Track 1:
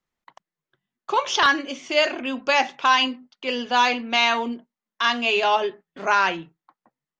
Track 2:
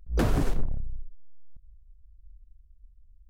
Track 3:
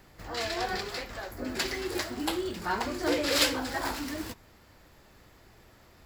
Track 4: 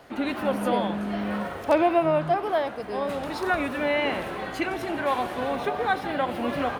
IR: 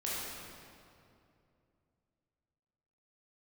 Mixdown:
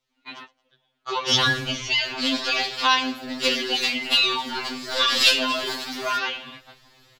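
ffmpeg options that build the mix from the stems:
-filter_complex "[0:a]acompressor=threshold=-25dB:ratio=6,volume=1.5dB,asplit=3[link_01][link_02][link_03];[link_02]volume=-16.5dB[link_04];[1:a]highpass=54,adelay=1100,volume=-1dB,asplit=2[link_05][link_06];[link_06]volume=-5.5dB[link_07];[2:a]aeval=exprs='0.299*(cos(1*acos(clip(val(0)/0.299,-1,1)))-cos(1*PI/2))+0.00944*(cos(8*acos(clip(val(0)/0.299,-1,1)))-cos(8*PI/2))':channel_layout=same,adelay=1850,volume=-0.5dB[link_08];[3:a]highshelf=frequency=3800:gain=-11,acompressor=threshold=-23dB:ratio=6,equalizer=frequency=3000:width_type=o:width=2.5:gain=9,volume=-13dB[link_09];[link_03]apad=whole_len=299576[link_10];[link_09][link_10]sidechaingate=range=-31dB:threshold=-54dB:ratio=16:detection=peak[link_11];[link_04][link_07]amix=inputs=2:normalize=0,aecho=0:1:111|222|333|444|555:1|0.36|0.13|0.0467|0.0168[link_12];[link_01][link_05][link_08][link_11][link_12]amix=inputs=5:normalize=0,equalizer=frequency=3900:width_type=o:width=1.5:gain=13.5,afftfilt=real='re*2.45*eq(mod(b,6),0)':imag='im*2.45*eq(mod(b,6),0)':win_size=2048:overlap=0.75"

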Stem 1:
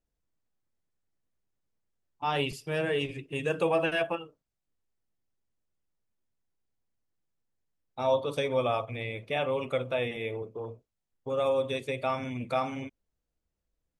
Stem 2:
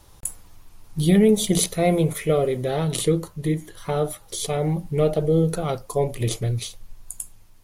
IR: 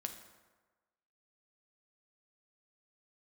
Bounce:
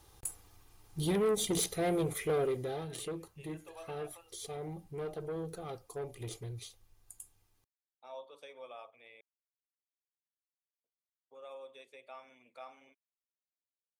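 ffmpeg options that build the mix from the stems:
-filter_complex "[0:a]highpass=500,adelay=50,volume=-19dB,asplit=3[link_01][link_02][link_03];[link_01]atrim=end=9.21,asetpts=PTS-STARTPTS,afade=type=out:start_time=9.206:duration=0.004:curve=hsin[link_04];[link_02]atrim=start=9.21:end=10.84,asetpts=PTS-STARTPTS,volume=0[link_05];[link_03]atrim=start=10.84,asetpts=PTS-STARTPTS,afade=type=in:duration=0.004:curve=hsin[link_06];[link_04][link_05][link_06]concat=n=3:v=0:a=1[link_07];[1:a]aecho=1:1:2.5:0.45,acrusher=bits=10:mix=0:aa=0.000001,asoftclip=type=tanh:threshold=-17.5dB,volume=-8dB,afade=type=out:start_time=2.42:duration=0.46:silence=0.398107,asplit=2[link_08][link_09];[link_09]apad=whole_len=619370[link_10];[link_07][link_10]sidechaincompress=threshold=-44dB:ratio=8:attack=16:release=624[link_11];[link_11][link_08]amix=inputs=2:normalize=0,highpass=frequency=66:poles=1"

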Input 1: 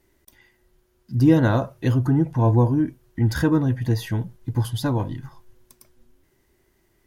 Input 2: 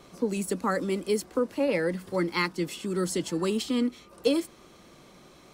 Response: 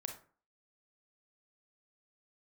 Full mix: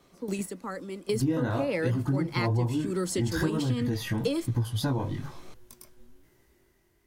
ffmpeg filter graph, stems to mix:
-filter_complex "[0:a]dynaudnorm=framelen=190:gausssize=9:maxgain=7dB,flanger=delay=17:depth=5.9:speed=1.1,volume=-1.5dB,asplit=2[link_01][link_02];[1:a]volume=1.5dB[link_03];[link_02]apad=whole_len=244304[link_04];[link_03][link_04]sidechaingate=range=-11dB:threshold=-59dB:ratio=16:detection=peak[link_05];[link_01][link_05]amix=inputs=2:normalize=0,acompressor=threshold=-25dB:ratio=4"

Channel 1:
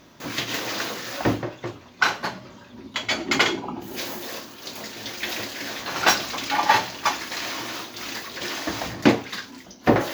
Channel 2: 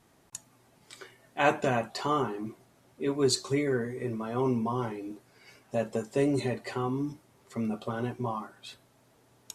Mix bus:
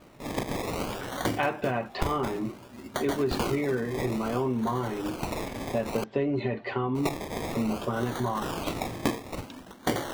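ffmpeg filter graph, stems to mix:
ffmpeg -i stem1.wav -i stem2.wav -filter_complex "[0:a]acrusher=samples=24:mix=1:aa=0.000001:lfo=1:lforange=14.4:lforate=0.58,volume=-2.5dB,asplit=3[link_01][link_02][link_03];[link_01]atrim=end=6.04,asetpts=PTS-STARTPTS,afade=type=out:start_time=6.036:duration=0.004:curve=hsin[link_04];[link_02]atrim=start=6.04:end=6.95,asetpts=PTS-STARTPTS,volume=0[link_05];[link_03]atrim=start=6.95,asetpts=PTS-STARTPTS,afade=type=in:duration=0.004:curve=hsin[link_06];[link_04][link_05][link_06]concat=n=3:v=0:a=1[link_07];[1:a]lowpass=frequency=3500:width=0.5412,lowpass=frequency=3500:width=1.3066,acontrast=71,volume=-1.5dB[link_08];[link_07][link_08]amix=inputs=2:normalize=0,acompressor=threshold=-24dB:ratio=5" out.wav

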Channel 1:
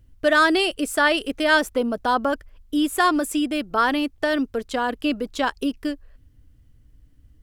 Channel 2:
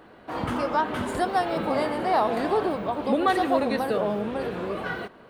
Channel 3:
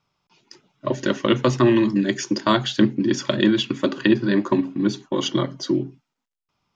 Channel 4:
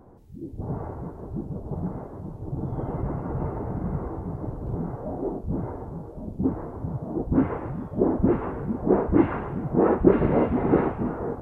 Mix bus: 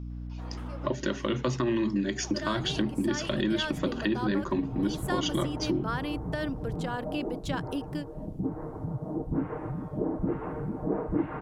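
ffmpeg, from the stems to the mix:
ffmpeg -i stem1.wav -i stem2.wav -i stem3.wav -i stem4.wav -filter_complex "[0:a]dynaudnorm=framelen=160:gausssize=17:maxgain=11.5dB,adelay=2100,volume=-14dB[link_01];[1:a]adelay=100,volume=-16.5dB[link_02];[2:a]alimiter=limit=-11.5dB:level=0:latency=1:release=28,aeval=exprs='val(0)+0.0141*(sin(2*PI*60*n/s)+sin(2*PI*2*60*n/s)/2+sin(2*PI*3*60*n/s)/3+sin(2*PI*4*60*n/s)/4+sin(2*PI*5*60*n/s)/5)':channel_layout=same,volume=1dB,asplit=2[link_03][link_04];[3:a]aecho=1:1:6.5:0.51,adelay=2000,volume=-2.5dB[link_05];[link_04]apad=whole_len=237796[link_06];[link_02][link_06]sidechaincompress=threshold=-31dB:ratio=8:attack=16:release=320[link_07];[link_01][link_07][link_03][link_05]amix=inputs=4:normalize=0,acompressor=threshold=-31dB:ratio=2" out.wav

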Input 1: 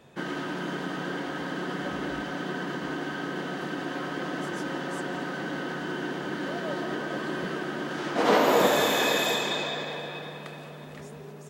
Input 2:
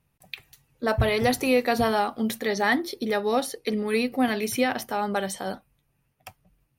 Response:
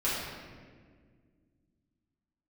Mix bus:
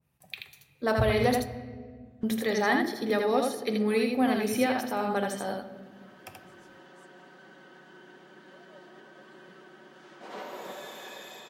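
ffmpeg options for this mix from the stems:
-filter_complex "[0:a]highpass=frequency=250:poles=1,aecho=1:1:5.3:0.49,adelay=2050,volume=-19.5dB[link_01];[1:a]highpass=63,adynamicequalizer=threshold=0.0141:dfrequency=1500:dqfactor=0.7:tfrequency=1500:tqfactor=0.7:attack=5:release=100:ratio=0.375:range=3:mode=cutabove:tftype=highshelf,volume=-4dB,asplit=3[link_02][link_03][link_04];[link_02]atrim=end=1.38,asetpts=PTS-STARTPTS,afade=type=out:start_time=1.376:duration=0.004:curve=hsin[link_05];[link_03]atrim=start=1.38:end=2.23,asetpts=PTS-STARTPTS,volume=0[link_06];[link_04]atrim=start=2.23,asetpts=PTS-STARTPTS,afade=type=in:duration=0.004:curve=hsin[link_07];[link_05][link_06][link_07]concat=n=3:v=0:a=1,asplit=4[link_08][link_09][link_10][link_11];[link_09]volume=-16.5dB[link_12];[link_10]volume=-3dB[link_13];[link_11]apad=whole_len=597578[link_14];[link_01][link_14]sidechaincompress=threshold=-35dB:ratio=8:attack=16:release=1350[link_15];[2:a]atrim=start_sample=2205[link_16];[link_12][link_16]afir=irnorm=-1:irlink=0[link_17];[link_13]aecho=0:1:81:1[link_18];[link_15][link_08][link_17][link_18]amix=inputs=4:normalize=0"

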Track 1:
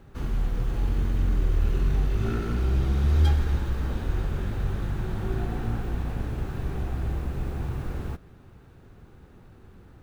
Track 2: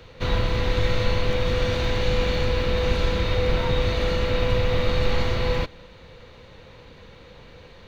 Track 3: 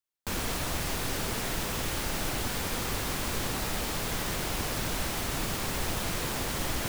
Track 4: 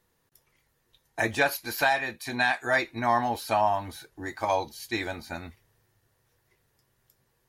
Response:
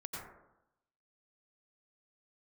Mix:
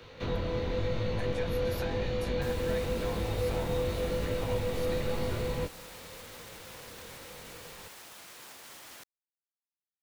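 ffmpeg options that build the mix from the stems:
-filter_complex "[1:a]lowshelf=frequency=100:gain=-9,acrossover=split=81|690[link_01][link_02][link_03];[link_01]acompressor=threshold=-32dB:ratio=4[link_04];[link_02]acompressor=threshold=-28dB:ratio=4[link_05];[link_03]acompressor=threshold=-43dB:ratio=4[link_06];[link_04][link_05][link_06]amix=inputs=3:normalize=0,flanger=delay=18.5:depth=5.4:speed=0.92,volume=1dB[link_07];[2:a]highpass=frequency=850:poles=1,alimiter=level_in=4dB:limit=-24dB:level=0:latency=1,volume=-4dB,adelay=2150,volume=-11.5dB[link_08];[3:a]acompressor=threshold=-33dB:ratio=6,volume=-9dB[link_09];[link_07][link_08][link_09]amix=inputs=3:normalize=0"

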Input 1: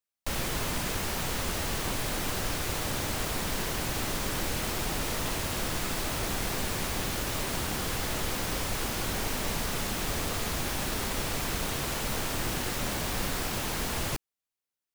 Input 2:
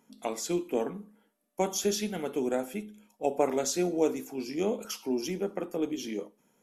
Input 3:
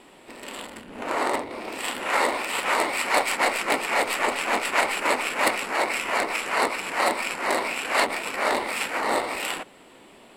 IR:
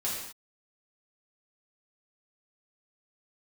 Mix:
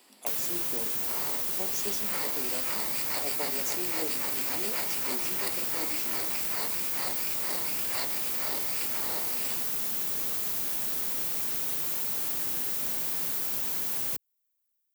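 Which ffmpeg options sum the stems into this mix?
-filter_complex "[0:a]volume=-5.5dB[link_01];[1:a]volume=-7dB[link_02];[2:a]equalizer=frequency=4800:width=4.2:gain=12.5,volume=-12dB[link_03];[link_01][link_02][link_03]amix=inputs=3:normalize=0,highpass=79,aemphasis=mode=production:type=bsi,acrossover=split=400[link_04][link_05];[link_05]acompressor=threshold=-27dB:ratio=6[link_06];[link_04][link_06]amix=inputs=2:normalize=0"

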